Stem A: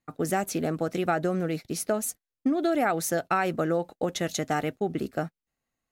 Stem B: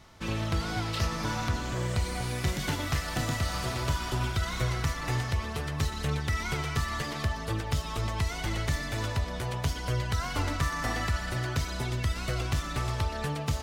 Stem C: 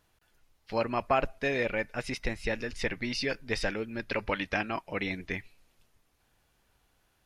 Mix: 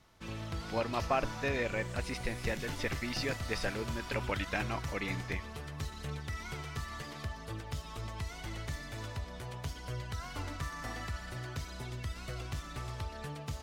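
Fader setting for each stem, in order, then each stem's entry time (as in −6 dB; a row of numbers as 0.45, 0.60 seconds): muted, −10.0 dB, −4.5 dB; muted, 0.00 s, 0.00 s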